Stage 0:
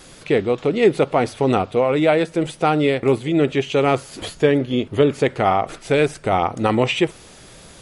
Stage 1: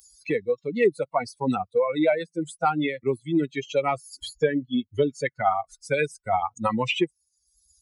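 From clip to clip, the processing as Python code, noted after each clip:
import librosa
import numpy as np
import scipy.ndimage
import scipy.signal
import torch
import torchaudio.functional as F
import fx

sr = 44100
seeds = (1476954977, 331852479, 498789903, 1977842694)

y = fx.bin_expand(x, sr, power=3.0)
y = fx.highpass(y, sr, hz=240.0, slope=6)
y = fx.band_squash(y, sr, depth_pct=70)
y = y * librosa.db_to_amplitude(2.0)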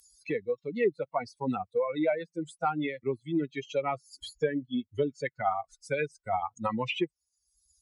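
y = fx.env_lowpass_down(x, sr, base_hz=2700.0, full_db=-19.0)
y = y * librosa.db_to_amplitude(-6.0)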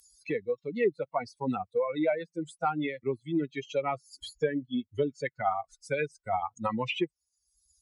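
y = x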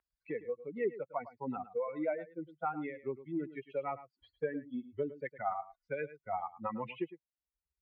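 y = scipy.signal.sosfilt(scipy.signal.butter(4, 2100.0, 'lowpass', fs=sr, output='sos'), x)
y = fx.low_shelf(y, sr, hz=110.0, db=-10.0)
y = y + 10.0 ** (-15.0 / 20.0) * np.pad(y, (int(107 * sr / 1000.0), 0))[:len(y)]
y = y * librosa.db_to_amplitude(-6.5)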